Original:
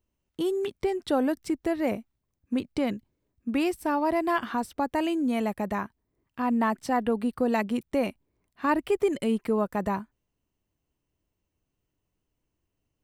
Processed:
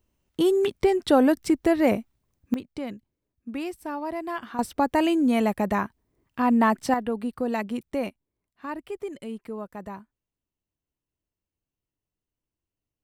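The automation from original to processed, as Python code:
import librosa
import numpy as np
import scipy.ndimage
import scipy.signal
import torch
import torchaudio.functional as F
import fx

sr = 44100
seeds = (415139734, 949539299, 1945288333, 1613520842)

y = fx.gain(x, sr, db=fx.steps((0.0, 6.5), (2.54, -6.0), (4.59, 5.0), (6.94, -2.0), (8.09, -9.5)))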